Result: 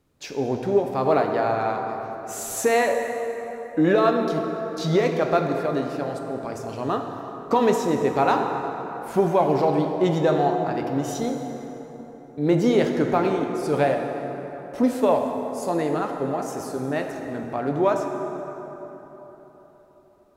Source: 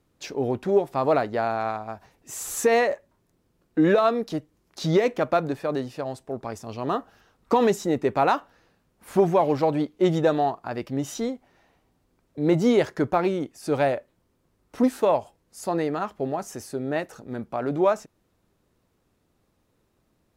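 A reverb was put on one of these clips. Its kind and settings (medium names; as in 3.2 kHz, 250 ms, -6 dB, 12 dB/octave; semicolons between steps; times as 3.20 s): plate-style reverb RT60 4.1 s, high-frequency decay 0.5×, DRR 3 dB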